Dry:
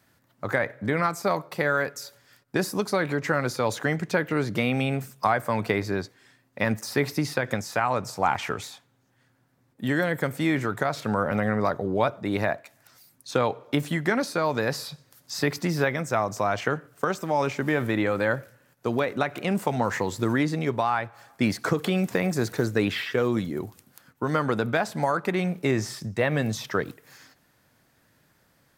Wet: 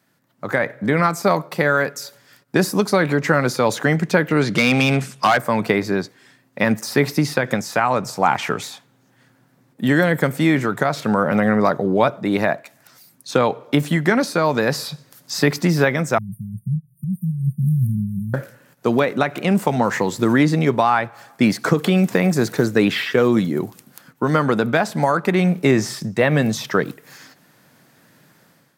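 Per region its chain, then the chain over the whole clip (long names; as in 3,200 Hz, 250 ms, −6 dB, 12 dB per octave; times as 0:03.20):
0:04.41–0:05.38: low-pass filter 11,000 Hz 24 dB per octave + parametric band 2,900 Hz +7 dB 2.2 octaves + hard clipping −17 dBFS
0:16.18–0:18.34: linear-phase brick-wall band-stop 210–8,700 Hz + low-shelf EQ 150 Hz +11.5 dB + expander for the loud parts, over −47 dBFS
whole clip: automatic gain control gain up to 11 dB; low shelf with overshoot 100 Hz −14 dB, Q 1.5; level −1 dB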